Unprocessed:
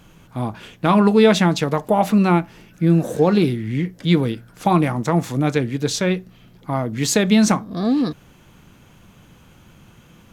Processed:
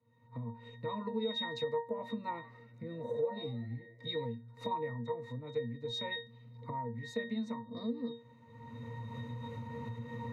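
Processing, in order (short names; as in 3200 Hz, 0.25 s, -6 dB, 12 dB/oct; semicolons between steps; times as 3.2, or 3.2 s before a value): recorder AGC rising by 26 dB/s; bell 270 Hz -8.5 dB 1 oct; octave resonator A#, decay 0.27 s; compressor 4:1, threshold -41 dBFS, peak gain reduction 15.5 dB; HPF 180 Hz 12 dB/oct; high shelf 9500 Hz +10 dB; 2.17–4.25 frequency-shifting echo 90 ms, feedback 54%, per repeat +110 Hz, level -19.5 dB; three-band expander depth 40%; gain +7 dB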